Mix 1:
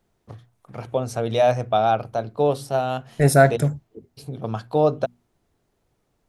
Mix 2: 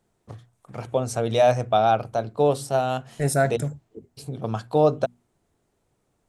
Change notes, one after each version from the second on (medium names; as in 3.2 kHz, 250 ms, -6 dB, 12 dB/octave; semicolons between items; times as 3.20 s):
second voice -7.0 dB; master: add peaking EQ 7.8 kHz +7.5 dB 0.57 oct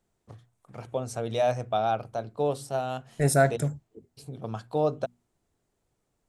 first voice -7.0 dB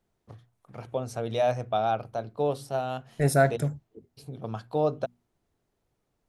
master: add peaking EQ 7.8 kHz -7.5 dB 0.57 oct